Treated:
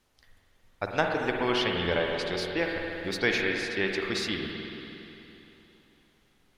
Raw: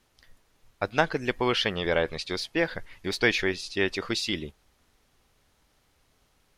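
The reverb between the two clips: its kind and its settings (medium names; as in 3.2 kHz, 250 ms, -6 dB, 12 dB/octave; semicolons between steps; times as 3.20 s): spring tank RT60 3.2 s, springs 46/57 ms, chirp 25 ms, DRR 0.5 dB; trim -3.5 dB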